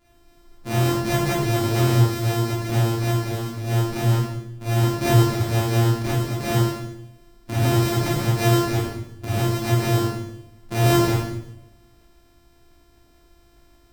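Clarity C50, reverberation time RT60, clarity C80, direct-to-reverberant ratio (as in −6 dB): 0.0 dB, 0.85 s, 4.0 dB, −9.5 dB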